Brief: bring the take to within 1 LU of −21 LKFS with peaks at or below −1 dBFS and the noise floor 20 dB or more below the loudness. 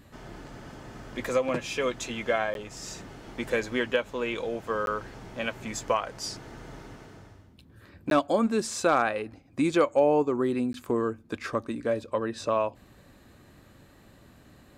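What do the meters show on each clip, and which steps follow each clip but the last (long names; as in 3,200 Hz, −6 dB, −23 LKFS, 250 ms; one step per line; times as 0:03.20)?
number of dropouts 4; longest dropout 12 ms; integrated loudness −28.5 LKFS; sample peak −11.5 dBFS; target loudness −21.0 LKFS
→ repair the gap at 0:02.54/0:04.86/0:08.10/0:10.73, 12 ms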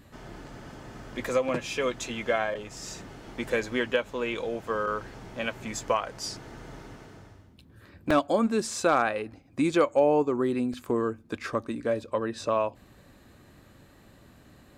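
number of dropouts 0; integrated loudness −28.5 LKFS; sample peak −11.0 dBFS; target loudness −21.0 LKFS
→ level +7.5 dB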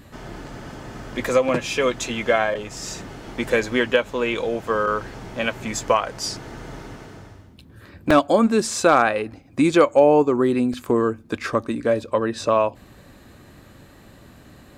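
integrated loudness −21.0 LKFS; sample peak −3.5 dBFS; background noise floor −48 dBFS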